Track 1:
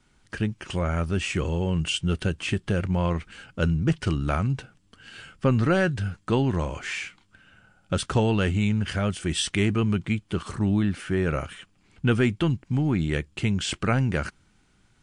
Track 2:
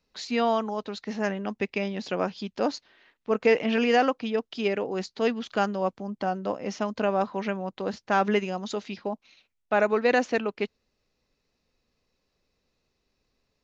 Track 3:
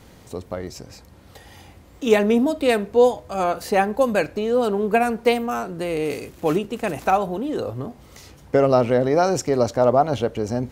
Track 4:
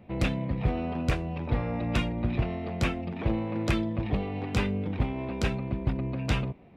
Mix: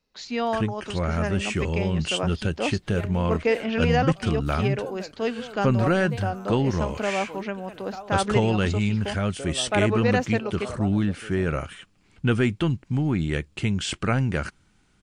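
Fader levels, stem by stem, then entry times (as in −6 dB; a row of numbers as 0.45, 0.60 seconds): 0.0 dB, −1.5 dB, −20.0 dB, muted; 0.20 s, 0.00 s, 0.85 s, muted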